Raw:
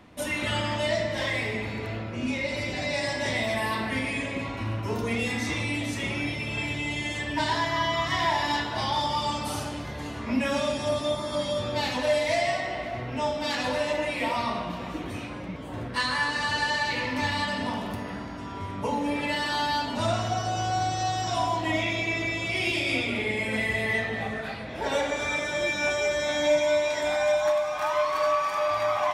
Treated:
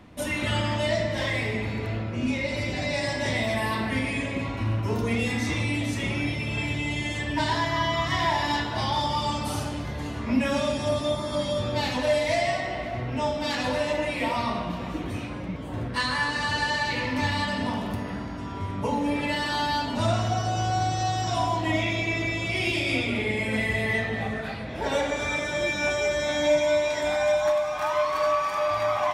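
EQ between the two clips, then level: low shelf 240 Hz +6 dB; 0.0 dB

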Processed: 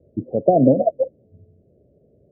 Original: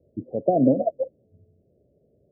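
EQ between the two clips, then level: dynamic EQ 270 Hz, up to -4 dB, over -30 dBFS, Q 1.9; air absorption 480 m; +7.5 dB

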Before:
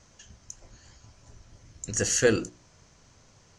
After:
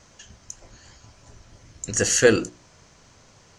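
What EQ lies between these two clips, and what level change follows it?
low shelf 190 Hz -5 dB; bell 6000 Hz -2.5 dB 0.57 oct; +6.5 dB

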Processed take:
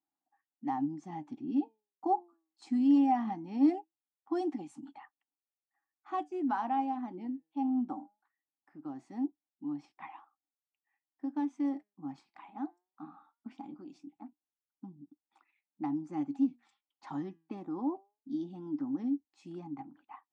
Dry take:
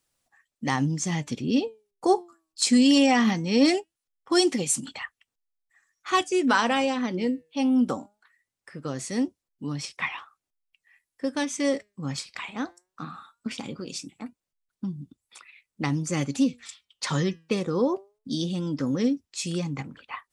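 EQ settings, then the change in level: double band-pass 490 Hz, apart 1.4 oct; -1.5 dB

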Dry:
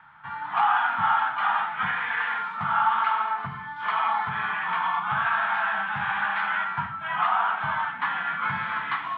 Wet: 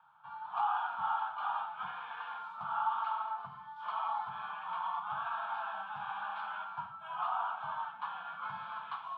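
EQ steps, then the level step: HPF 370 Hz 6 dB/oct; fixed phaser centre 810 Hz, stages 4; -8.5 dB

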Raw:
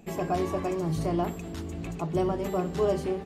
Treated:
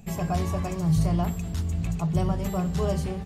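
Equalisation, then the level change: tone controls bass +12 dB, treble +6 dB; bell 320 Hz -12 dB 0.9 oct; 0.0 dB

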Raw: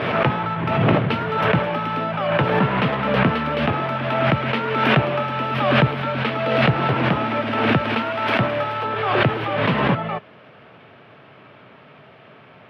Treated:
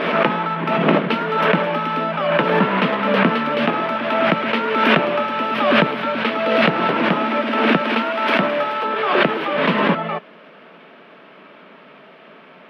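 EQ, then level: brick-wall FIR high-pass 160 Hz; notch 770 Hz, Q 12; +3.0 dB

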